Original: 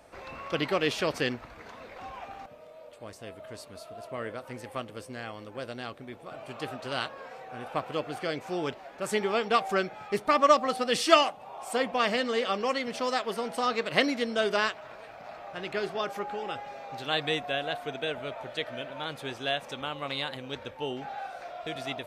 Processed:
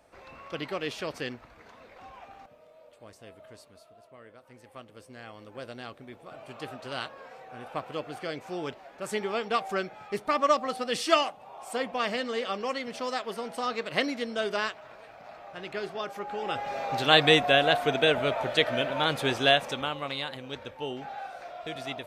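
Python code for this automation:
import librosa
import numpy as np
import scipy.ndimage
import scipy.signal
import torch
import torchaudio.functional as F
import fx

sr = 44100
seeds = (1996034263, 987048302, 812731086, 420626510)

y = fx.gain(x, sr, db=fx.line((3.46, -6.0), (4.21, -15.5), (5.58, -3.0), (16.18, -3.0), (16.79, 9.5), (19.45, 9.5), (20.17, -1.0)))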